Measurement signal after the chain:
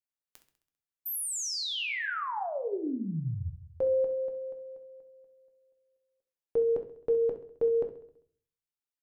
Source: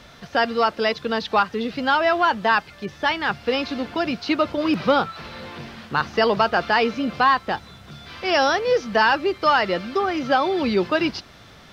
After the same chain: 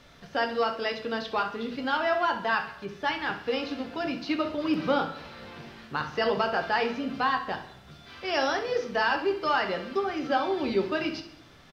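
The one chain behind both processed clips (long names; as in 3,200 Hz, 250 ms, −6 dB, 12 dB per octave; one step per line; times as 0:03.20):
repeating echo 66 ms, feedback 56%, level −14 dB
rectangular room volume 40 cubic metres, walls mixed, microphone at 0.32 metres
level −9 dB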